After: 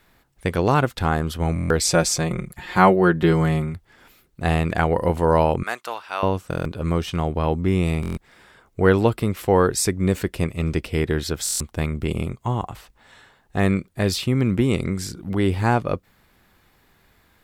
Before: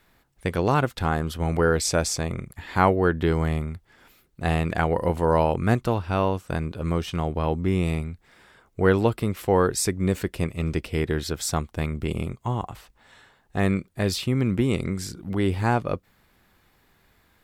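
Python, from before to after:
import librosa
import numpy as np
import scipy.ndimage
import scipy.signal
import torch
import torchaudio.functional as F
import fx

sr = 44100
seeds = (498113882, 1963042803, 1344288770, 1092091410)

y = fx.comb(x, sr, ms=5.6, depth=0.74, at=(1.8, 3.74))
y = fx.highpass(y, sr, hz=940.0, slope=12, at=(5.63, 6.23))
y = fx.buffer_glitch(y, sr, at_s=(1.54, 6.49, 8.01, 11.44), block=1024, repeats=6)
y = F.gain(torch.from_numpy(y), 3.0).numpy()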